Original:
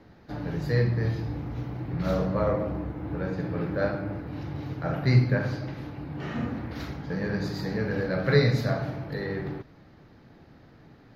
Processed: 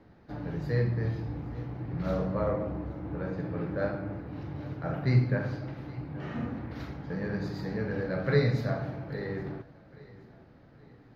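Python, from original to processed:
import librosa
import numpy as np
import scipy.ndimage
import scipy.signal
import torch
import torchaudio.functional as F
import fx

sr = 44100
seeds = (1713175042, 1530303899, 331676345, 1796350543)

p1 = fx.high_shelf(x, sr, hz=3300.0, db=-8.0)
p2 = p1 + fx.echo_feedback(p1, sr, ms=822, feedback_pct=36, wet_db=-20, dry=0)
y = p2 * librosa.db_to_amplitude(-3.5)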